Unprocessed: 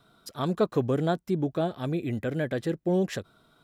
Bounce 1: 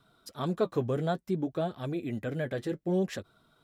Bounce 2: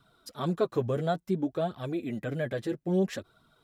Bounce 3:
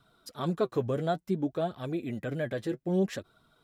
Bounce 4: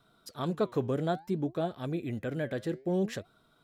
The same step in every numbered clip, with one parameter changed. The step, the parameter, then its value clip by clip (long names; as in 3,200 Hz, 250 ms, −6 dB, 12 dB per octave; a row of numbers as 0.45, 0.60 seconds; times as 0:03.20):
flanger, regen: −49, +5, +36, +88%